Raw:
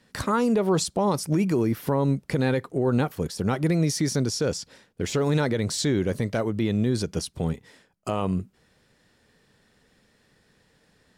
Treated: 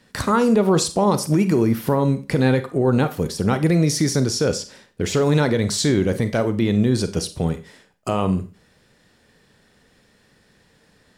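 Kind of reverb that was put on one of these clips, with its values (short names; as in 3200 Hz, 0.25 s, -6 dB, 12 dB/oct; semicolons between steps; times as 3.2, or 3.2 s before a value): Schroeder reverb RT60 0.34 s, combs from 31 ms, DRR 10.5 dB; gain +5 dB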